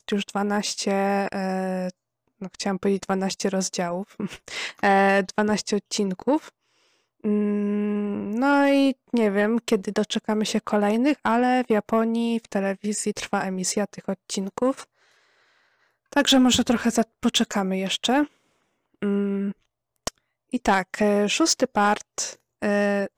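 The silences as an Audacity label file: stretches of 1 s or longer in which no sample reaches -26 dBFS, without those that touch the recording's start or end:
14.800000	16.130000	silence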